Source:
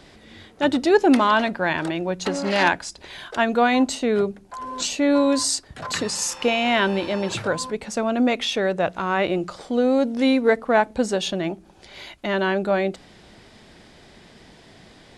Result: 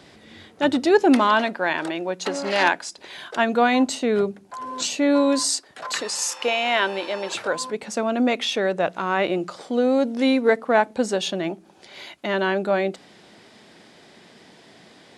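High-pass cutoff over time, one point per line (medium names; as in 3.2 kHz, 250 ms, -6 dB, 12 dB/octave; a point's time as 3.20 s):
1.01 s 92 Hz
1.59 s 290 Hz
2.78 s 290 Hz
3.48 s 130 Hz
5.21 s 130 Hz
5.80 s 440 Hz
7.39 s 440 Hz
7.82 s 180 Hz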